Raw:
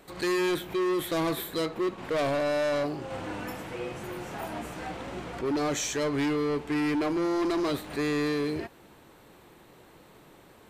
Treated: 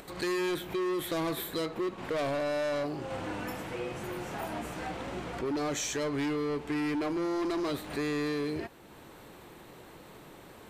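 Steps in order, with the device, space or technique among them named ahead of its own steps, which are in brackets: upward and downward compression (upward compressor, threshold -44 dBFS; compressor 3:1, threshold -31 dBFS, peak gain reduction 4.5 dB)

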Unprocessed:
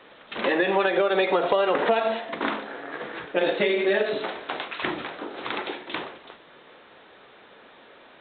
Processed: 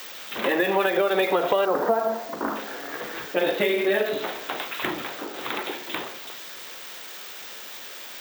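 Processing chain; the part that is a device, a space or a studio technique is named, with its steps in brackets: 1.65–2.56 inverse Chebyshev low-pass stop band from 2900 Hz, stop band 40 dB; budget class-D amplifier (switching dead time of 0.055 ms; switching spikes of -25 dBFS)

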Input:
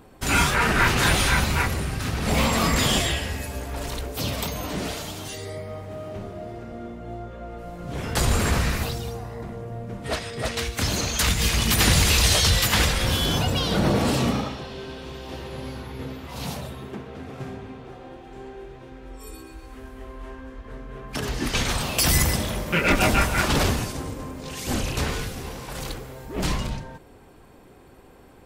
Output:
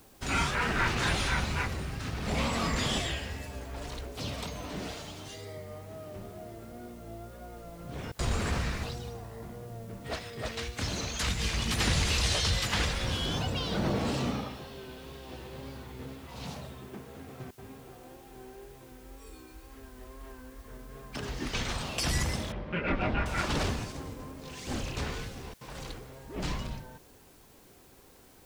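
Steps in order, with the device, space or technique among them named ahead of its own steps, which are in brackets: worn cassette (LPF 7400 Hz 12 dB/oct; wow and flutter; level dips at 8.12/17.51/25.54, 68 ms -28 dB; white noise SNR 27 dB); 22.52–23.26 air absorption 360 m; gain -8.5 dB

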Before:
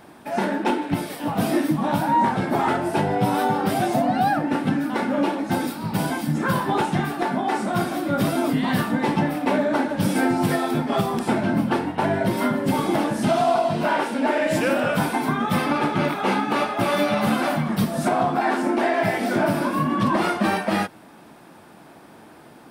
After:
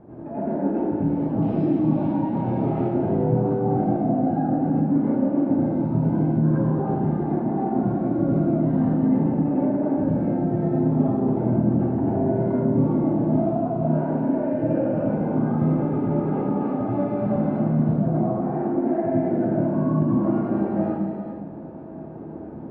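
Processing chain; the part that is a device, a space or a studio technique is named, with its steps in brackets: television next door (compressor 4:1, threshold -31 dBFS, peak gain reduction 13 dB; LPF 450 Hz 12 dB/oct; reverb RT60 0.75 s, pre-delay 83 ms, DRR -8 dB); 1.42–2.94 band shelf 3700 Hz +12.5 dB; non-linear reverb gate 0.48 s flat, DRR 3 dB; gain +3 dB

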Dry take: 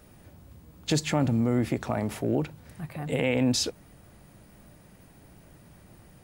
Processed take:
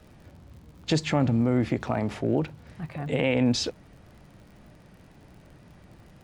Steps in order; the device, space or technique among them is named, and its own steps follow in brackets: lo-fi chain (LPF 5100 Hz 12 dB/oct; wow and flutter; crackle 59/s -47 dBFS); gain +1.5 dB

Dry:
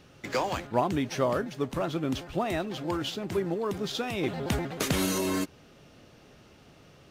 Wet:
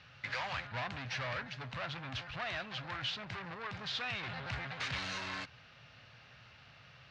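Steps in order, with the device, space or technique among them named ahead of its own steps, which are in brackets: scooped metal amplifier (tube stage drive 34 dB, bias 0.4; speaker cabinet 87–4000 Hz, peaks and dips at 120 Hz +8 dB, 270 Hz +7 dB, 400 Hz -4 dB, 1600 Hz +3 dB, 3300 Hz -5 dB; passive tone stack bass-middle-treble 10-0-10); gain +9 dB

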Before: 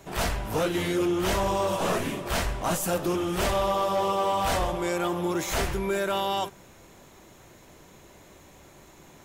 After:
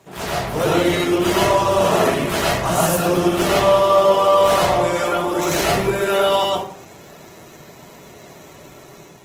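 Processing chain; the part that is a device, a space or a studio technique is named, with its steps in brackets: far-field microphone of a smart speaker (reverb RT60 0.55 s, pre-delay 96 ms, DRR -4.5 dB; HPF 100 Hz 12 dB/oct; AGC gain up to 5 dB; Opus 16 kbps 48000 Hz)

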